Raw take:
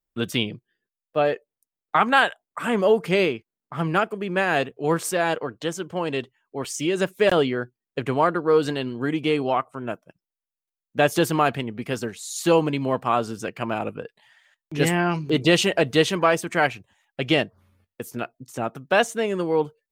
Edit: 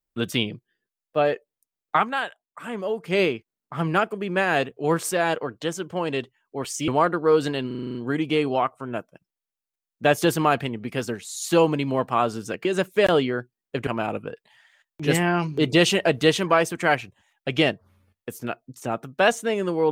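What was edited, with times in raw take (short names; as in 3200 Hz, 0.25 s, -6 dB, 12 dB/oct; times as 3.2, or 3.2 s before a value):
1.96–3.19 dip -9 dB, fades 0.13 s
6.88–8.1 move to 13.59
8.89 stutter 0.04 s, 8 plays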